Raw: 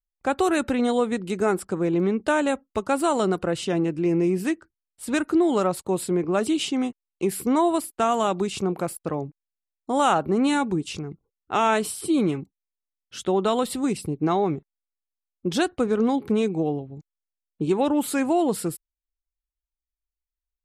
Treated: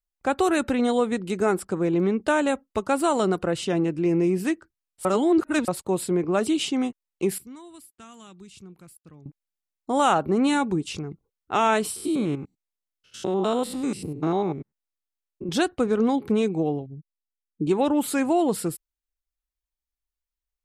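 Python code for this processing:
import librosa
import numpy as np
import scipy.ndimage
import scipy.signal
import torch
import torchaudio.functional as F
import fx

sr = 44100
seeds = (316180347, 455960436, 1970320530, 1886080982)

y = fx.tone_stack(x, sr, knobs='6-0-2', at=(7.38, 9.26))
y = fx.spec_steps(y, sr, hold_ms=100, at=(11.96, 15.49))
y = fx.spec_expand(y, sr, power=1.8, at=(16.86, 17.67))
y = fx.edit(y, sr, fx.reverse_span(start_s=5.05, length_s=0.63), tone=tone)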